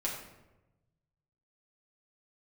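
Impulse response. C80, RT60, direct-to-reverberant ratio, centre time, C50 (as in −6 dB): 6.5 dB, 1.0 s, −4.5 dB, 41 ms, 4.0 dB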